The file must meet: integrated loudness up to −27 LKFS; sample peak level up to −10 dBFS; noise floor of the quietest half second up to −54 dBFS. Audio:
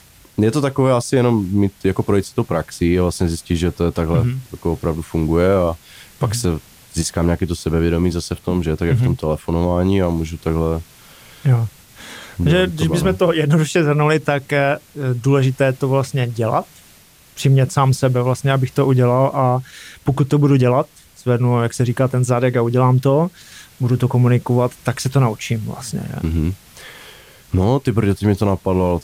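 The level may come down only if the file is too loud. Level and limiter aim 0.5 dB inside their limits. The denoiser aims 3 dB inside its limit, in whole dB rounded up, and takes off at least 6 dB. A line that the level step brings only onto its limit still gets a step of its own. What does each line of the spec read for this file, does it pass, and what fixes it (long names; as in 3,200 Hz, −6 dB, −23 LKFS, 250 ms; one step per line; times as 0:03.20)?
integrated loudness −18.0 LKFS: out of spec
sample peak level −5.0 dBFS: out of spec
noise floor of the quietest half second −48 dBFS: out of spec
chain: level −9.5 dB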